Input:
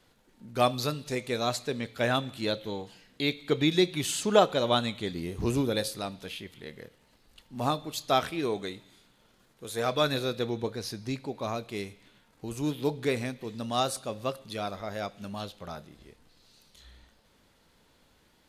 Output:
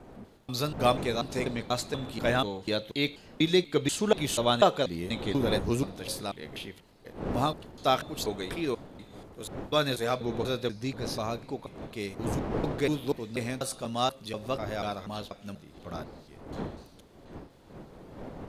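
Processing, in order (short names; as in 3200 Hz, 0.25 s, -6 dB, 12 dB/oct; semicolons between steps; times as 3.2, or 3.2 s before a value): slices in reverse order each 0.243 s, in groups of 2; wind noise 460 Hz -41 dBFS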